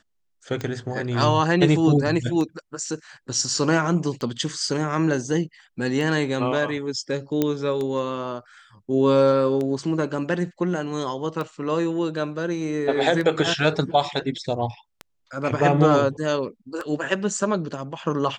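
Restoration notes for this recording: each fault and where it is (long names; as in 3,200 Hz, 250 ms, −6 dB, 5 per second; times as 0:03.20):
scratch tick 33 1/3 rpm −17 dBFS
0:07.42: click −8 dBFS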